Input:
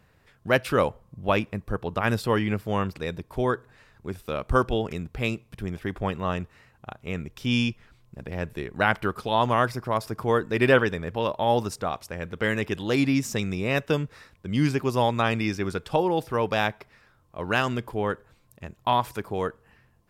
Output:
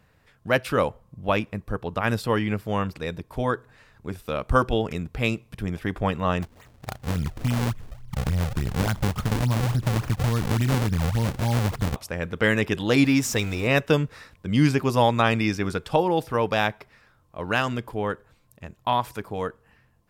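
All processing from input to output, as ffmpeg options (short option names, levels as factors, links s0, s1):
-filter_complex "[0:a]asettb=1/sr,asplit=3[s0][s1][s2];[s0]atrim=end=6.424[s3];[s1]atrim=start=6.42:end=11.96,asetpts=PTS-STARTPTS,afade=t=in:d=0.004:c=qsin,afade=t=out:st=5.536:d=0.004:c=qsin,asubboost=boost=11.5:cutoff=150,acompressor=threshold=0.0708:ratio=10:attack=3.2:release=140:knee=1:detection=peak,acrusher=samples=40:mix=1:aa=0.000001:lfo=1:lforange=64:lforate=3.5[s4];[s2]atrim=start=11.956[s5];[s3][s4]acrossfade=d=0.004:c1=hsin:c2=qsin[s6];[s6][s5]acrossfade=d=0.004:c1=qsin:c2=hsin,asettb=1/sr,asplit=3[s7][s8][s9];[s7]atrim=end=13.044[s10];[s8]atrim=start=13.04:end=13.67,asetpts=PTS-STARTPTS,afade=t=in:d=0.004:c=qsin,afade=t=out:st=0.626:d=0.004:c=qsin,aeval=exprs='val(0)+0.5*0.0119*sgn(val(0))':c=same,equalizer=f=180:w=2.4:g=-10,bandreject=f=600:w=15[s11];[s9]atrim=start=13.666[s12];[s10][s11]acrossfade=d=0.004:c1=hsin:c2=qsin[s13];[s13][s12]acrossfade=d=0.004:c1=qsin:c2=hsin,bandreject=f=380:w=12,dynaudnorm=f=440:g=21:m=1.78"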